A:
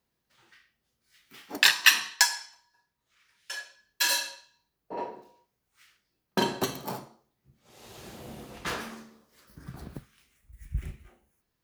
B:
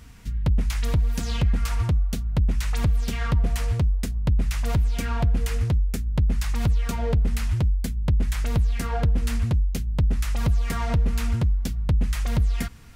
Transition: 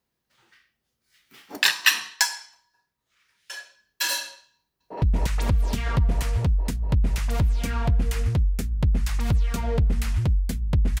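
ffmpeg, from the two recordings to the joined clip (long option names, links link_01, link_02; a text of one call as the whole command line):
ffmpeg -i cue0.wav -i cue1.wav -filter_complex "[0:a]apad=whole_dur=11,atrim=end=11,atrim=end=5.022[link_01];[1:a]atrim=start=2.368:end=8.35[link_02];[link_01][link_02]acrossfade=duration=0.004:curve1=hsin:curve2=hsin,asplit=2[link_03][link_04];[link_04]afade=type=in:start_time=4.56:duration=0.01,afade=type=out:start_time=5.02:duration=0.01,aecho=0:1:240|480|720|960|1200|1440|1680|1920|2160|2400|2640|2880:0.944061|0.802452|0.682084|0.579771|0.492806|0.418885|0.356052|0.302644|0.257248|0.21866|0.185861|0.157982[link_05];[link_03][link_05]amix=inputs=2:normalize=0" out.wav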